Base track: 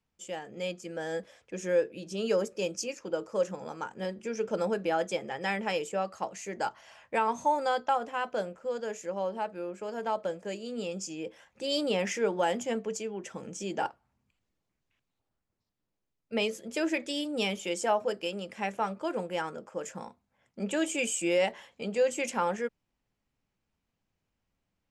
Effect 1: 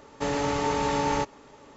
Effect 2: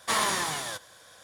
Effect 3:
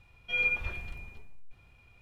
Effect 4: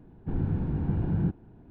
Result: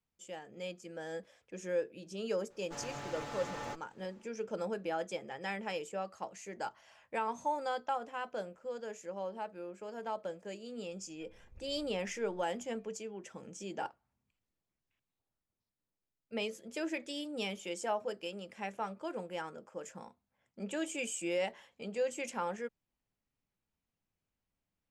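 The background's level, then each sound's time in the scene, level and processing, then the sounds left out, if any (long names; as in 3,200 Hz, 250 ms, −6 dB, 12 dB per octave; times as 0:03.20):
base track −7.5 dB
0:02.50: mix in 1 −14.5 dB + lower of the sound and its delayed copy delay 8.3 ms
0:10.91: mix in 3 −17.5 dB + treble cut that deepens with the level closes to 410 Hz, closed at −30.5 dBFS
not used: 2, 4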